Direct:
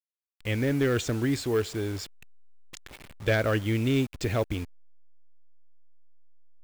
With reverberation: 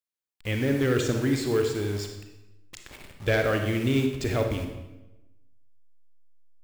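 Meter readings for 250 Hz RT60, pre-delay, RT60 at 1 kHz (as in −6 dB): 1.2 s, 33 ms, 0.95 s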